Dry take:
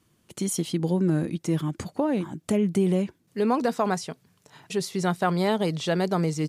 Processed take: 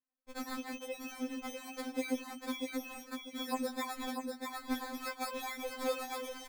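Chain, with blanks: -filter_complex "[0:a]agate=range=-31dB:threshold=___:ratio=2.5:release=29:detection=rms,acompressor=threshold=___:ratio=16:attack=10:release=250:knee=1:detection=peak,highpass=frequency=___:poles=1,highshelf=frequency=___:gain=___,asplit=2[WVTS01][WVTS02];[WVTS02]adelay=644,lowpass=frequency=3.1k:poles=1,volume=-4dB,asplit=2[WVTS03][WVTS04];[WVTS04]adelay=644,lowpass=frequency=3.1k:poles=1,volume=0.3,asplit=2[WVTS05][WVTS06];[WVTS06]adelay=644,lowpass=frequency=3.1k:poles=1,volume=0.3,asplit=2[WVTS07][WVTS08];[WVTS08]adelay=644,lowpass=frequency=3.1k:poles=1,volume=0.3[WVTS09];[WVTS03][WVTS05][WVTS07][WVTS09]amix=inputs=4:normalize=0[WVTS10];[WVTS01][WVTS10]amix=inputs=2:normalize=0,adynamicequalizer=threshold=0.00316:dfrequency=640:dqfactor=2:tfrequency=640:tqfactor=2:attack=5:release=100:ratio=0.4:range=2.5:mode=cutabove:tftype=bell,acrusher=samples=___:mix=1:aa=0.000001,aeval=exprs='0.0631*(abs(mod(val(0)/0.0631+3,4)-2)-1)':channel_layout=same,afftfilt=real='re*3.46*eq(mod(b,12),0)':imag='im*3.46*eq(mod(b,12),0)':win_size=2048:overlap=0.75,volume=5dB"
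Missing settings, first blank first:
-52dB, -32dB, 350, 5.5k, -7.5, 15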